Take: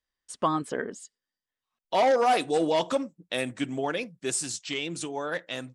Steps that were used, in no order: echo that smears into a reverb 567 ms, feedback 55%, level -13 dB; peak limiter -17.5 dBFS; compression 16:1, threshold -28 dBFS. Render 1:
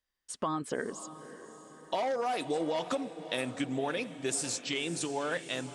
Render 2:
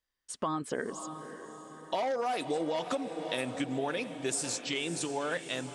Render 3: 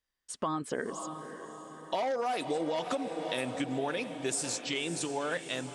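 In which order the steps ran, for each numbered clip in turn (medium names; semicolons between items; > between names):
peak limiter > compression > echo that smears into a reverb; peak limiter > echo that smears into a reverb > compression; echo that smears into a reverb > peak limiter > compression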